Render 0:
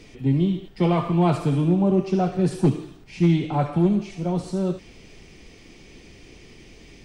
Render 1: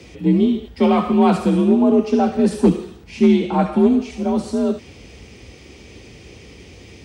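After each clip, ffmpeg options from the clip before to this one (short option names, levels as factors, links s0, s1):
-af "afreqshift=47,volume=1.78"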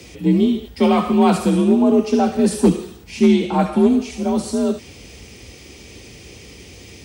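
-af "aemphasis=mode=production:type=50kf"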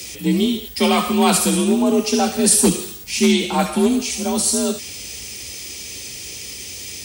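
-af "crystalizer=i=7.5:c=0,volume=0.708"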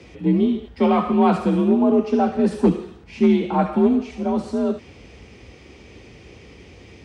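-af "lowpass=1300"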